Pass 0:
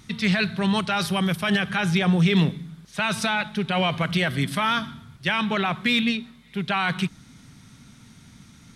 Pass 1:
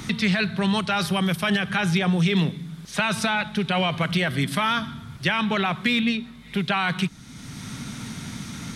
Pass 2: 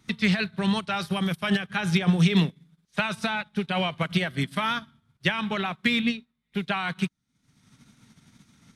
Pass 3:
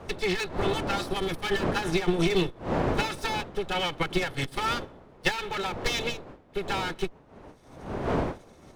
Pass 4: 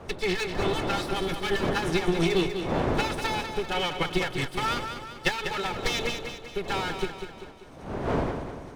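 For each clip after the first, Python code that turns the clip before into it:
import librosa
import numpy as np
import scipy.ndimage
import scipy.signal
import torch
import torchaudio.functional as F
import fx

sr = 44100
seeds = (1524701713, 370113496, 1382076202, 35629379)

y1 = fx.band_squash(x, sr, depth_pct=70)
y2 = fx.wow_flutter(y1, sr, seeds[0], rate_hz=2.1, depth_cents=22.0)
y2 = fx.upward_expand(y2, sr, threshold_db=-43.0, expansion=2.5)
y2 = F.gain(torch.from_numpy(y2), 2.5).numpy()
y3 = fx.lower_of_two(y2, sr, delay_ms=2.3)
y3 = fx.dmg_wind(y3, sr, seeds[1], corner_hz=590.0, level_db=-35.0)
y4 = fx.echo_feedback(y3, sr, ms=195, feedback_pct=50, wet_db=-8)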